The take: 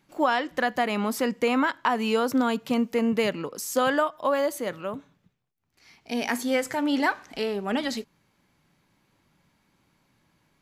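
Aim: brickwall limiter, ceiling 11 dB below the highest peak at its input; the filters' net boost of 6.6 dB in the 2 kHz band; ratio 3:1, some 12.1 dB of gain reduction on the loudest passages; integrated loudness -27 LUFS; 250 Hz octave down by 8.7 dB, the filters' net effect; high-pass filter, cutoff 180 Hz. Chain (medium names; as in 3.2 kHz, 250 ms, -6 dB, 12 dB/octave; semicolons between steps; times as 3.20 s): high-pass 180 Hz; peaking EQ 250 Hz -8.5 dB; peaking EQ 2 kHz +8.5 dB; compression 3:1, threshold -33 dBFS; trim +11 dB; peak limiter -16 dBFS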